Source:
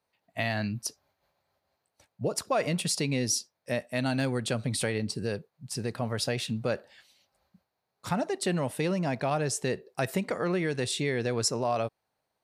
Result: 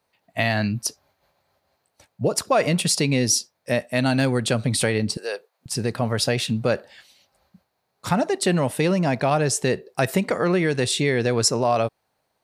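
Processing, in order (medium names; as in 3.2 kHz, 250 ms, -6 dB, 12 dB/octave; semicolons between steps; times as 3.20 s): 5.17–5.66 s: high-pass 490 Hz 24 dB/octave; trim +8 dB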